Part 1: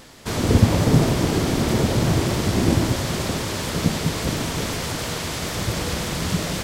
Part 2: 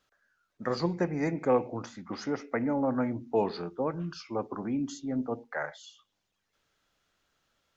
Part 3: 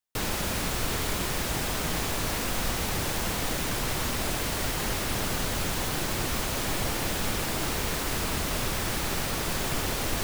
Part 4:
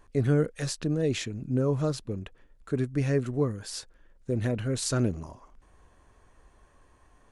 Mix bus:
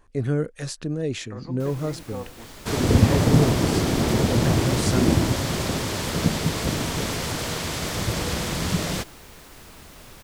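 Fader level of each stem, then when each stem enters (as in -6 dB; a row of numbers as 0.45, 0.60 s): -1.0, -10.5, -16.0, 0.0 dB; 2.40, 0.65, 1.45, 0.00 s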